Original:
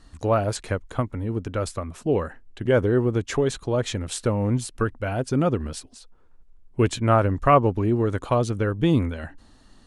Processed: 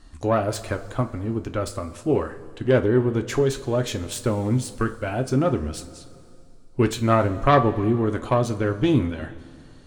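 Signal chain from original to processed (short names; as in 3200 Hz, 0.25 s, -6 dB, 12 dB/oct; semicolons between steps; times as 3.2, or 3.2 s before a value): self-modulated delay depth 0.098 ms; two-slope reverb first 0.24 s, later 2.6 s, from -18 dB, DRR 6 dB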